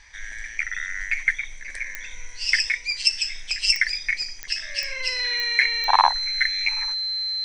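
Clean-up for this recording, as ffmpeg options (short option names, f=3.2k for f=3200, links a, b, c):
-af "adeclick=t=4,bandreject=f=4.1k:w=30"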